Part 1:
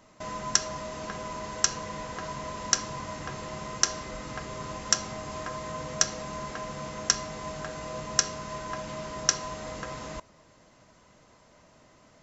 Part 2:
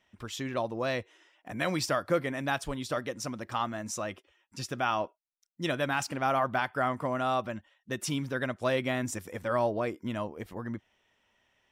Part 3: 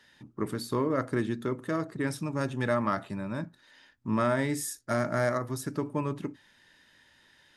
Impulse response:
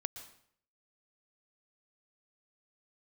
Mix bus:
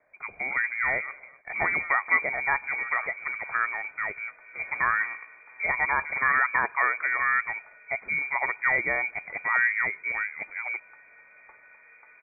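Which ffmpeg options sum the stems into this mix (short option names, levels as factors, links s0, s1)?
-filter_complex "[0:a]asoftclip=type=hard:threshold=0.178,adelay=2200,volume=0.133,asplit=2[s0][s1];[s1]volume=0.299[s2];[1:a]highpass=120,highshelf=f=2400:g=7.5,volume=1.33,asplit=3[s3][s4][s5];[s4]volume=0.126[s6];[2:a]acrusher=samples=4:mix=1:aa=0.000001,volume=8.41,asoftclip=hard,volume=0.119,adelay=100,volume=0.355,asplit=2[s7][s8];[s8]volume=0.141[s9];[s5]apad=whole_len=337947[s10];[s7][s10]sidechaingate=range=0.0224:threshold=0.00251:ratio=16:detection=peak[s11];[3:a]atrim=start_sample=2205[s12];[s6][s12]afir=irnorm=-1:irlink=0[s13];[s2][s9]amix=inputs=2:normalize=0,aecho=0:1:253:1[s14];[s0][s3][s11][s13][s14]amix=inputs=5:normalize=0,equalizer=f=69:t=o:w=1:g=8.5,lowpass=f=2100:t=q:w=0.5098,lowpass=f=2100:t=q:w=0.6013,lowpass=f=2100:t=q:w=0.9,lowpass=f=2100:t=q:w=2.563,afreqshift=-2500"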